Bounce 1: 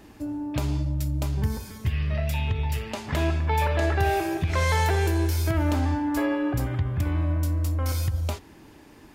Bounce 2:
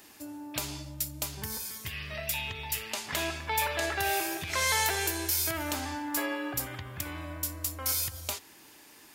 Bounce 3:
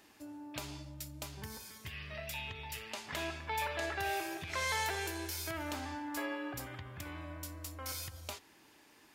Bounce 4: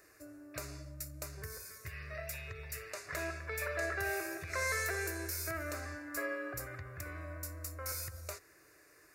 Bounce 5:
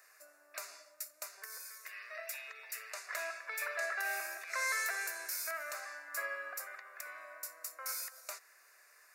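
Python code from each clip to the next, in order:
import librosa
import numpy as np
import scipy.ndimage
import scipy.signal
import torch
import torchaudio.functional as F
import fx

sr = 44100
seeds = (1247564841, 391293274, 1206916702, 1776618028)

y1 = fx.tilt_eq(x, sr, slope=4.0)
y1 = y1 * 10.0 ** (-4.0 / 20.0)
y2 = fx.lowpass(y1, sr, hz=3800.0, slope=6)
y2 = y2 * 10.0 ** (-5.5 / 20.0)
y3 = fx.fixed_phaser(y2, sr, hz=870.0, stages=6)
y3 = y3 * 10.0 ** (3.5 / 20.0)
y4 = scipy.signal.sosfilt(scipy.signal.butter(4, 680.0, 'highpass', fs=sr, output='sos'), y3)
y4 = y4 * 10.0 ** (1.0 / 20.0)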